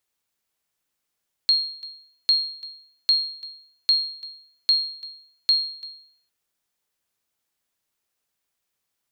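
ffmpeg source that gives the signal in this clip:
-f lavfi -i "aevalsrc='0.266*(sin(2*PI*4250*mod(t,0.8))*exp(-6.91*mod(t,0.8)/0.61)+0.0944*sin(2*PI*4250*max(mod(t,0.8)-0.34,0))*exp(-6.91*max(mod(t,0.8)-0.34,0)/0.61))':d=4.8:s=44100"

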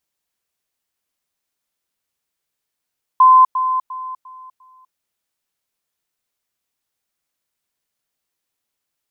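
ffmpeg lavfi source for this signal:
-f lavfi -i "aevalsrc='pow(10,(-5.5-10*floor(t/0.35))/20)*sin(2*PI*1030*t)*clip(min(mod(t,0.35),0.25-mod(t,0.35))/0.005,0,1)':d=1.75:s=44100"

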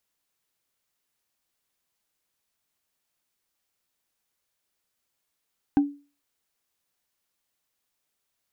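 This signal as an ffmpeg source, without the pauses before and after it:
-f lavfi -i "aevalsrc='0.224*pow(10,-3*t/0.34)*sin(2*PI*286*t)+0.0631*pow(10,-3*t/0.101)*sin(2*PI*788.5*t)+0.0178*pow(10,-3*t/0.045)*sin(2*PI*1545.5*t)+0.00501*pow(10,-3*t/0.025)*sin(2*PI*2554.8*t)+0.00141*pow(10,-3*t/0.015)*sin(2*PI*3815.2*t)':d=0.45:s=44100"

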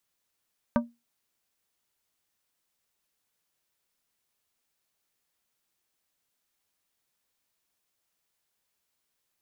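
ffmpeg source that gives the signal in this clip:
-f lavfi -i "aevalsrc='0.126*pow(10,-3*t/0.23)*sin(2*PI*236*t)+0.0891*pow(10,-3*t/0.121)*sin(2*PI*590*t)+0.0631*pow(10,-3*t/0.087)*sin(2*PI*944*t)+0.0447*pow(10,-3*t/0.075)*sin(2*PI*1180*t)+0.0316*pow(10,-3*t/0.062)*sin(2*PI*1534*t)':d=0.89:s=44100"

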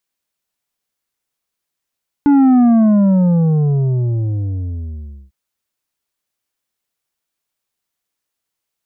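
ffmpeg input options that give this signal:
-f lavfi -i "aevalsrc='0.398*clip((3.05-t)/2.72,0,1)*tanh(2.24*sin(2*PI*290*3.05/log(65/290)*(exp(log(65/290)*t/3.05)-1)))/tanh(2.24)':d=3.05:s=44100"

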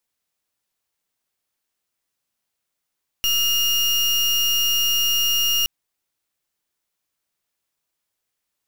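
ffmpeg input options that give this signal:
-f lavfi -i "aevalsrc='0.106*(2*lt(mod(2840*t,1),0.33)-1)':d=2.42:s=44100"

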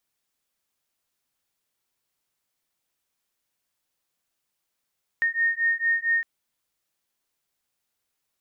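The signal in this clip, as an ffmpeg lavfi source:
-f lavfi -i "aevalsrc='0.0631*(sin(2*PI*1840*t)+sin(2*PI*1844.4*t))':d=1.01:s=44100"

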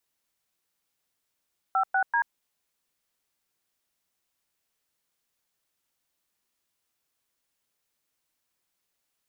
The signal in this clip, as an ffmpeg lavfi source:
-f lavfi -i "aevalsrc='0.0668*clip(min(mod(t,0.193),0.085-mod(t,0.193))/0.002,0,1)*(eq(floor(t/0.193),0)*(sin(2*PI*770*mod(t,0.193))+sin(2*PI*1336*mod(t,0.193)))+eq(floor(t/0.193),1)*(sin(2*PI*770*mod(t,0.193))+sin(2*PI*1477*mod(t,0.193)))+eq(floor(t/0.193),2)*(sin(2*PI*941*mod(t,0.193))+sin(2*PI*1633*mod(t,0.193))))':d=0.579:s=44100"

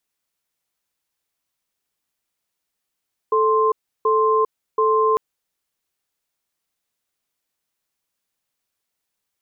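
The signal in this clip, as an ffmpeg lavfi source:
-f lavfi -i "aevalsrc='0.141*(sin(2*PI*438*t)+sin(2*PI*1050*t))*clip(min(mod(t,0.73),0.4-mod(t,0.73))/0.005,0,1)':d=1.85:s=44100"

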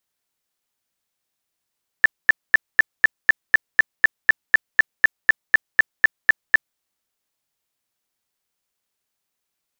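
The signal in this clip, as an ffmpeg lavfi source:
-f lavfi -i "aevalsrc='0.447*sin(2*PI*1760*mod(t,0.25))*lt(mod(t,0.25),29/1760)':d=4.75:s=44100"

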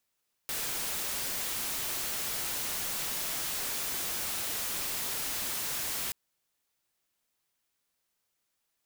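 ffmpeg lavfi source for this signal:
-f lavfi -i "anoisesrc=c=white:a=0.0346:d=5.63:r=44100:seed=1"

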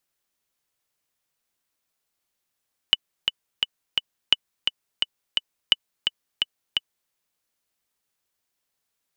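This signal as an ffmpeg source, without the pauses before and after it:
-f lavfi -i "aevalsrc='pow(10,(-2-6*gte(mod(t,4*60/172),60/172))/20)*sin(2*PI*2970*mod(t,60/172))*exp(-6.91*mod(t,60/172)/0.03)':d=4.18:s=44100"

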